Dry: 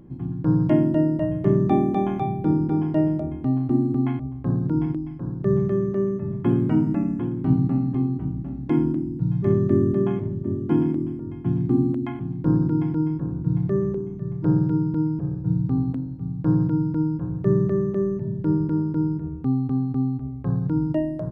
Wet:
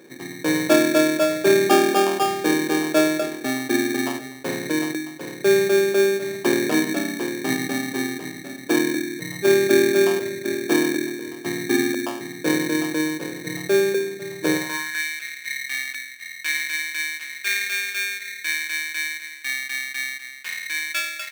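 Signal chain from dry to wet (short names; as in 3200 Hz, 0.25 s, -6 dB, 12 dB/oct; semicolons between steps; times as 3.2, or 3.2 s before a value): sample-rate reducer 2000 Hz, jitter 0%; high-pass sweep 470 Hz -> 2100 Hz, 14.53–15.04; gain +4 dB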